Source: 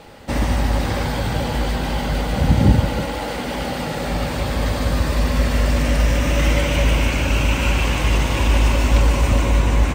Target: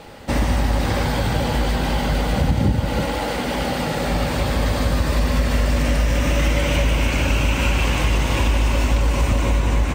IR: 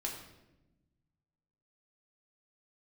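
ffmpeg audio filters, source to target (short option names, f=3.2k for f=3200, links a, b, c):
-af "acompressor=threshold=-16dB:ratio=6,volume=2dB"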